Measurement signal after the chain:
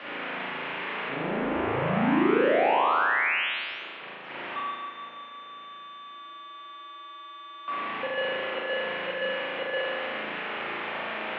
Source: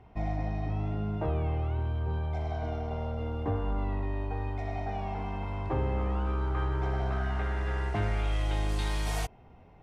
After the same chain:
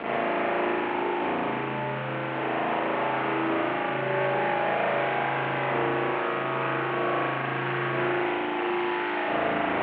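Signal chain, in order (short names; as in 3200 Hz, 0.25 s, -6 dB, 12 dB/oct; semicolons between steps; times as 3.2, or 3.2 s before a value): infinite clipping; vocal rider 0.5 s; spring tank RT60 1.8 s, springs 36 ms, chirp 35 ms, DRR -8.5 dB; mistuned SSB -61 Hz 270–2900 Hz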